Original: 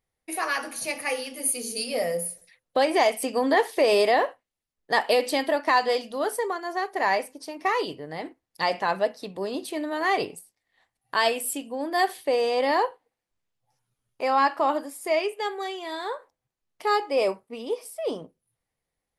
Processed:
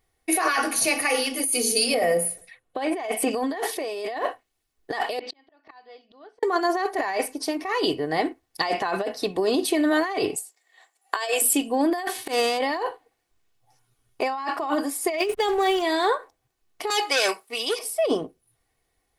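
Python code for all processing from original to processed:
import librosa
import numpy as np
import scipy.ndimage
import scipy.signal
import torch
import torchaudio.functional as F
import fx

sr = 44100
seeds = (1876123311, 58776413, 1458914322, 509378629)

y = fx.chain(x, sr, fx.lowpass(hz=10000.0, slope=12),
    fx.peak_eq(hz=5400.0, db=-10.0, octaves=1.1), at=(1.94, 3.31))
y = fx.chain(y, sr, fx.lowpass(hz=4500.0, slope=24),
    fx.auto_swell(attack_ms=267.0),
    fx.gate_flip(shuts_db=-32.0, range_db=-31), at=(5.19, 6.43))
y = fx.chain(y, sr, fx.highpass(hz=400.0, slope=24),
    fx.peak_eq(hz=7300.0, db=12.5, octaves=0.22), at=(10.36, 11.42))
y = fx.envelope_flatten(y, sr, power=0.6, at=(12.09, 12.57), fade=0.02)
y = fx.highpass(y, sr, hz=79.0, slope=12, at=(12.09, 12.57), fade=0.02)
y = fx.auto_swell(y, sr, attack_ms=258.0, at=(12.09, 12.57), fade=0.02)
y = fx.chain(y, sr, fx.high_shelf(hz=6400.0, db=6.0),
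    fx.backlash(play_db=-39.0), at=(15.18, 15.82))
y = fx.chain(y, sr, fx.highpass(hz=1100.0, slope=6),
    fx.high_shelf(hz=2000.0, db=11.0),
    fx.transformer_sat(knee_hz=3700.0), at=(16.9, 17.79))
y = y + 0.47 * np.pad(y, (int(2.7 * sr / 1000.0), 0))[:len(y)]
y = fx.over_compress(y, sr, threshold_db=-29.0, ratio=-1.0)
y = y * 10.0 ** (5.0 / 20.0)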